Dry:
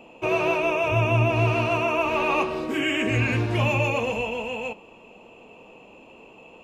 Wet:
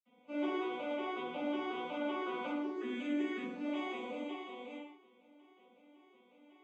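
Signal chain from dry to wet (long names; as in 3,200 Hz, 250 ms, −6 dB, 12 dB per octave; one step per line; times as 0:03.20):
vocoder with an arpeggio as carrier minor triad, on B3, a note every 184 ms
convolution reverb, pre-delay 46 ms, DRR −60 dB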